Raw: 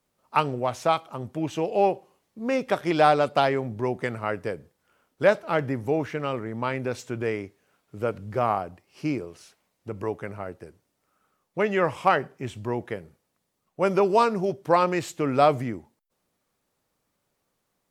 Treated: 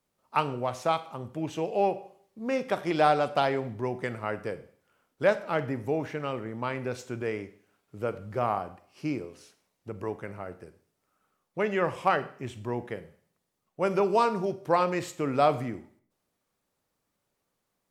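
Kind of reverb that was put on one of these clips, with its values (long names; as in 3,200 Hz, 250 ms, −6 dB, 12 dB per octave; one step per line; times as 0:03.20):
four-comb reverb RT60 0.55 s, combs from 33 ms, DRR 13 dB
level −4 dB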